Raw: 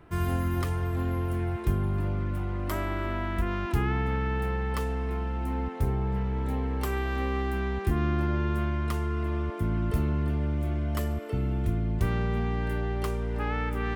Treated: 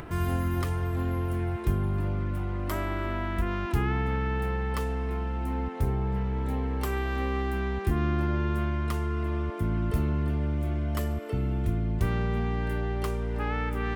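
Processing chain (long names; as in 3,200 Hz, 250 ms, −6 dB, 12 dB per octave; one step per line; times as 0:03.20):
upward compression, threshold −30 dBFS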